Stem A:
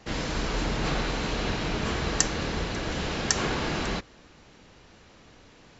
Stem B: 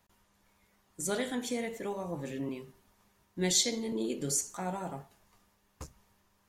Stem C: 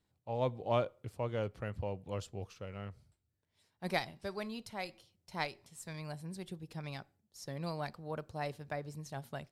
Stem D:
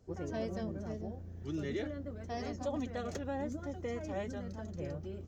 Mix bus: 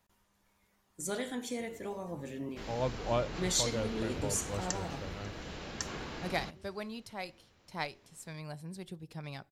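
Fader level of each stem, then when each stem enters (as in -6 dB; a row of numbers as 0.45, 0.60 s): -13.5, -3.5, 0.0, -17.5 dB; 2.50, 0.00, 2.40, 1.50 s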